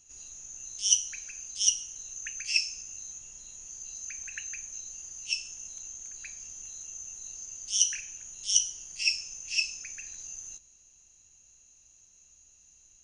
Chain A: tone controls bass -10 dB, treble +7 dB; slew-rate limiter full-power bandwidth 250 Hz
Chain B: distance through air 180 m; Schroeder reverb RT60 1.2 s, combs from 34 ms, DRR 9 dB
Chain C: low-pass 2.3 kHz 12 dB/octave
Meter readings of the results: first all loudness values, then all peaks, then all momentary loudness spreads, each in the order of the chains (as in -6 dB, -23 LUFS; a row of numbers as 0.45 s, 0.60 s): -31.0 LUFS, -37.5 LUFS, -41.0 LUFS; -14.5 dBFS, -15.5 dBFS, -18.5 dBFS; 22 LU, 19 LU, 21 LU